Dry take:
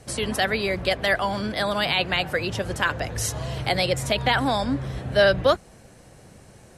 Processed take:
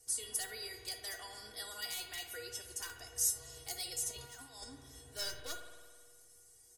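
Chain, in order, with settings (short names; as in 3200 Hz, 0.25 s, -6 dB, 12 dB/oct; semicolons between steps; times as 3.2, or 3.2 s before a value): one-sided fold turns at -13 dBFS; resonant high shelf 4500 Hz +8 dB, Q 1.5; comb 2.7 ms, depth 90%; 4.11–4.64 negative-ratio compressor -25 dBFS, ratio -0.5; pre-emphasis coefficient 0.8; resonator 480 Hz, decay 0.24 s, harmonics all, mix 90%; spring tank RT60 1.7 s, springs 52 ms, chirp 40 ms, DRR 6 dB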